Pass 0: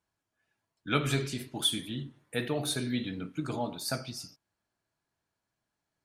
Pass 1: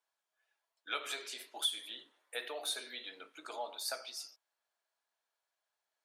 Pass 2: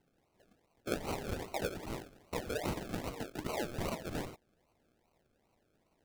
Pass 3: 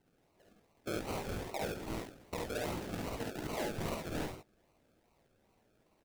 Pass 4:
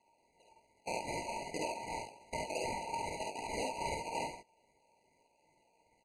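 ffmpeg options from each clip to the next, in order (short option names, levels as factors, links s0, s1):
-af "equalizer=f=3500:w=3.9:g=3.5,acompressor=threshold=0.0251:ratio=2,highpass=f=520:w=0.5412,highpass=f=520:w=1.3066,volume=0.75"
-af "acompressor=threshold=0.00398:ratio=6,acrusher=samples=36:mix=1:aa=0.000001:lfo=1:lforange=21.6:lforate=2.5,volume=5.01"
-filter_complex "[0:a]alimiter=level_in=2.11:limit=0.0631:level=0:latency=1:release=301,volume=0.473,asplit=2[s0][s1];[s1]aecho=0:1:50|69:0.668|0.668[s2];[s0][s2]amix=inputs=2:normalize=0"
-af "highpass=100,equalizer=f=180:t=q:w=4:g=9,equalizer=f=330:t=q:w=4:g=-7,equalizer=f=2500:t=q:w=4:g=9,equalizer=f=8000:t=q:w=4:g=9,lowpass=f=9700:w=0.5412,lowpass=f=9700:w=1.3066,aeval=exprs='val(0)*sin(2*PI*1100*n/s)':c=same,afftfilt=real='re*eq(mod(floor(b*sr/1024/990),2),0)':imag='im*eq(mod(floor(b*sr/1024/990),2),0)':win_size=1024:overlap=0.75,volume=1.88"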